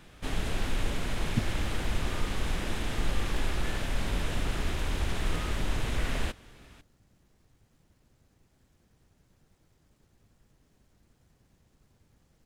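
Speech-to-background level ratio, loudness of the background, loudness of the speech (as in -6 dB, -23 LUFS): -3.0 dB, -33.5 LUFS, -36.5 LUFS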